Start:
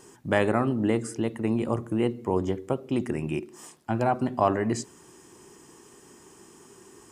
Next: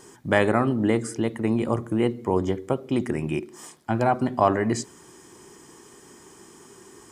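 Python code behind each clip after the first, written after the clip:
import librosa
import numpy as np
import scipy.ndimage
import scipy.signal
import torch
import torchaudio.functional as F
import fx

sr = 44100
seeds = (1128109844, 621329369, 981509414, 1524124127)

y = fx.peak_eq(x, sr, hz=2500.0, db=2.5, octaves=2.0)
y = fx.notch(y, sr, hz=2700.0, q=10.0)
y = y * librosa.db_to_amplitude(2.5)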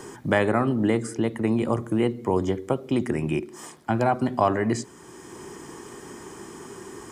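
y = fx.band_squash(x, sr, depth_pct=40)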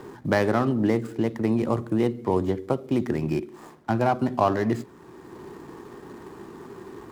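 y = scipy.signal.medfilt(x, 15)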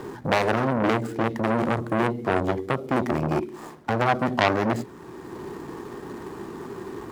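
y = fx.transformer_sat(x, sr, knee_hz=2100.0)
y = y * librosa.db_to_amplitude(5.5)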